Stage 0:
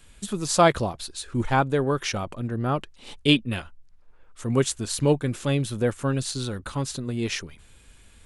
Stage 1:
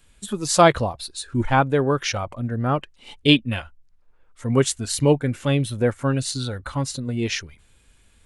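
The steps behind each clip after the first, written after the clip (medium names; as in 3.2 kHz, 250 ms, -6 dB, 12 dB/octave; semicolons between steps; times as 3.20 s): spectral noise reduction 8 dB; trim +3.5 dB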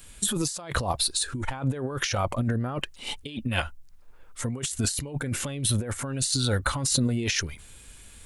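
treble shelf 6.1 kHz +10.5 dB; compressor with a negative ratio -29 dBFS, ratio -1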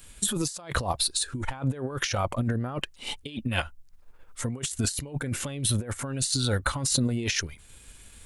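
transient shaper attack +1 dB, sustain -4 dB; trim -1 dB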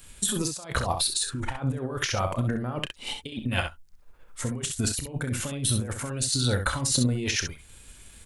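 early reflections 32 ms -12 dB, 65 ms -7.5 dB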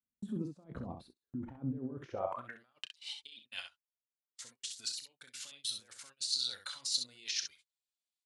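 band-pass sweep 230 Hz -> 4.5 kHz, 2.04–2.66 s; gate -53 dBFS, range -33 dB; trim -3 dB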